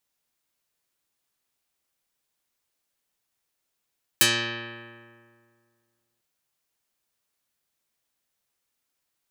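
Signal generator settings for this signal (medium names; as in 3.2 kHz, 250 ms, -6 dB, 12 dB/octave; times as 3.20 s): plucked string A#2, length 2.00 s, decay 2.10 s, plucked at 0.17, dark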